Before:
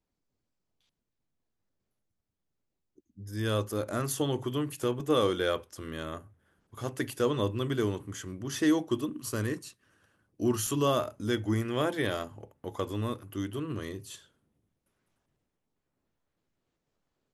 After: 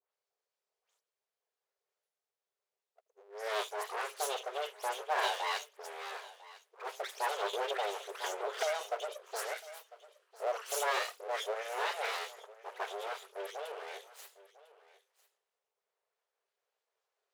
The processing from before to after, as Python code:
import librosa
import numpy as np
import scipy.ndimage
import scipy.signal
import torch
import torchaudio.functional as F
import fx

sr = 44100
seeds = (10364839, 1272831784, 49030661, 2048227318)

y = fx.high_shelf(x, sr, hz=10000.0, db=-8.5)
y = fx.dispersion(y, sr, late='highs', ms=131.0, hz=2400.0)
y = np.abs(y)
y = fx.brickwall_highpass(y, sr, low_hz=380.0)
y = y + 10.0 ** (-19.0 / 20.0) * np.pad(y, (int(1000 * sr / 1000.0), 0))[:len(y)]
y = fx.band_squash(y, sr, depth_pct=100, at=(7.53, 8.81))